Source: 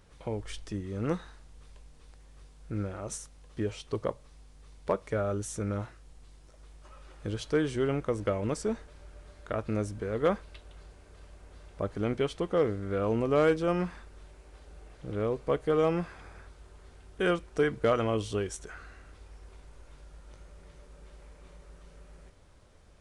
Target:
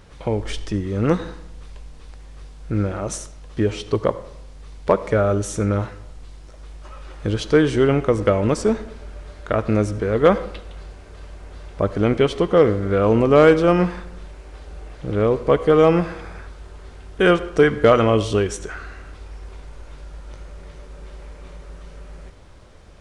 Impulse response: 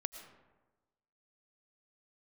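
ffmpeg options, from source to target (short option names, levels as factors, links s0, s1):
-filter_complex "[0:a]asplit=2[s0][s1];[1:a]atrim=start_sample=2205,asetrate=70560,aresample=44100,lowpass=7300[s2];[s1][s2]afir=irnorm=-1:irlink=0,volume=1.33[s3];[s0][s3]amix=inputs=2:normalize=0,volume=2.37"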